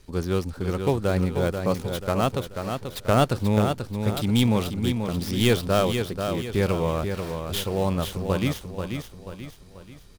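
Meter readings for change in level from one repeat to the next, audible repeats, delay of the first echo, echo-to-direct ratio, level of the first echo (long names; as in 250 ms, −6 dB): −7.5 dB, 4, 486 ms, −5.5 dB, −6.5 dB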